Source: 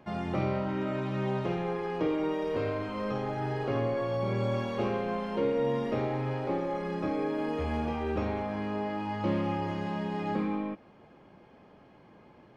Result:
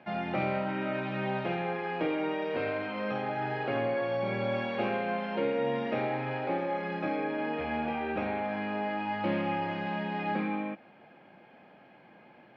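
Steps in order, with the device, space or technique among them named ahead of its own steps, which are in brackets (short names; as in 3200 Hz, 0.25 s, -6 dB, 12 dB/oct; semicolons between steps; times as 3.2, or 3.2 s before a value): kitchen radio (speaker cabinet 190–4200 Hz, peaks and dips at 290 Hz -3 dB, 420 Hz -6 dB, 750 Hz +4 dB, 1100 Hz -6 dB, 1600 Hz +5 dB, 2400 Hz +6 dB); 7.2–8.45 air absorption 77 m; gain +1.5 dB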